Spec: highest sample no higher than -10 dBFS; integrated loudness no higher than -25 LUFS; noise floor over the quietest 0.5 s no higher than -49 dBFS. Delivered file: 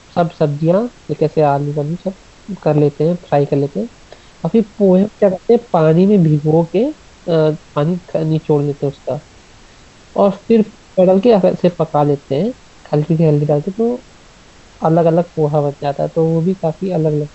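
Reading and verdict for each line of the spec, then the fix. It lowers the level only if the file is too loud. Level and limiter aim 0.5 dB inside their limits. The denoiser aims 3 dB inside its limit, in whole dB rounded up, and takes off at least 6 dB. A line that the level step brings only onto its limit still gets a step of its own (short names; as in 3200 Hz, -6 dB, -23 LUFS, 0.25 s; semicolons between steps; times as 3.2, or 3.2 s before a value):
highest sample -1.5 dBFS: fail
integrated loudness -15.5 LUFS: fail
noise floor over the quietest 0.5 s -43 dBFS: fail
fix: gain -10 dB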